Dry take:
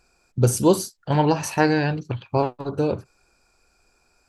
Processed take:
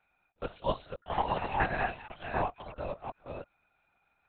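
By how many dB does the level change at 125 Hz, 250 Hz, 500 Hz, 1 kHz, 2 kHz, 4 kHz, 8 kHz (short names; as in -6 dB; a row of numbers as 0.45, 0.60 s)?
-18.5 dB, -20.0 dB, -13.5 dB, -6.0 dB, -6.0 dB, -11.5 dB, under -40 dB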